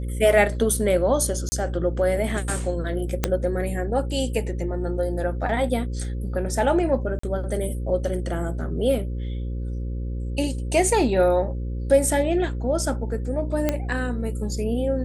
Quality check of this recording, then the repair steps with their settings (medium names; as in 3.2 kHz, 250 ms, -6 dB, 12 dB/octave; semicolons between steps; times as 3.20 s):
buzz 60 Hz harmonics 9 -28 dBFS
1.49–1.52 s: dropout 30 ms
3.24 s: pop -5 dBFS
7.19–7.23 s: dropout 44 ms
13.69 s: pop -8 dBFS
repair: de-click; de-hum 60 Hz, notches 9; interpolate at 1.49 s, 30 ms; interpolate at 7.19 s, 44 ms